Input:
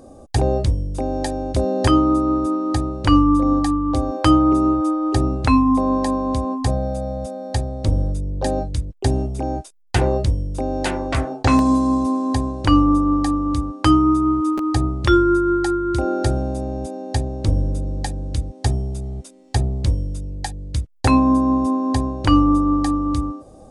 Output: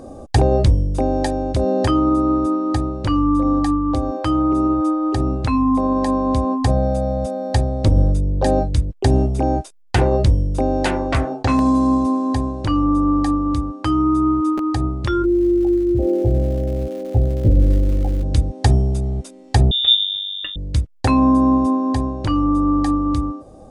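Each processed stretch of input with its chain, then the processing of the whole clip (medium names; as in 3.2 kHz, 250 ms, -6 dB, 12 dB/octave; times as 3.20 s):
15.22–18.22 s: steep low-pass 640 Hz + crackle 260 per s -34 dBFS + doubling 17 ms -5 dB
19.71–20.56 s: feedback comb 60 Hz, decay 0.16 s, harmonics odd, mix 80% + frequency inversion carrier 3.6 kHz
whole clip: treble shelf 5 kHz -6.5 dB; peak limiter -11.5 dBFS; gain riding 2 s; trim +2.5 dB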